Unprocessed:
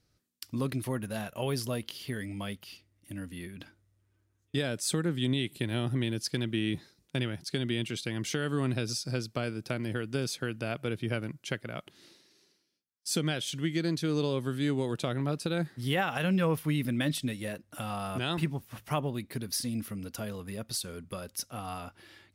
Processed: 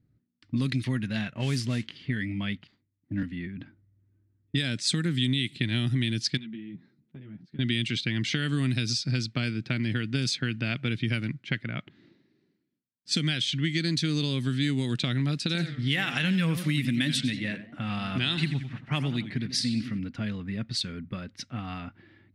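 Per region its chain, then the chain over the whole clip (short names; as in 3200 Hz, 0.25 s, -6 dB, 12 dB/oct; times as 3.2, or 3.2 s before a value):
1.34–1.96 bell 3900 Hz -7.5 dB 1.1 oct + modulation noise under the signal 19 dB
2.67–3.23 median filter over 15 samples + three-band expander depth 70%
6.37–7.59 resonant low shelf 100 Hz -12.5 dB, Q 1.5 + compressor 3:1, threshold -46 dBFS + ensemble effect
15.38–19.99 low shelf 68 Hz -9.5 dB + warbling echo 90 ms, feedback 44%, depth 199 cents, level -12 dB
whole clip: low-pass opened by the level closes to 680 Hz, open at -25 dBFS; graphic EQ 125/250/500/1000/2000/4000/8000 Hz +9/+9/-6/-4/+11/+11/+10 dB; compressor 3:1, threshold -23 dBFS; gain -1 dB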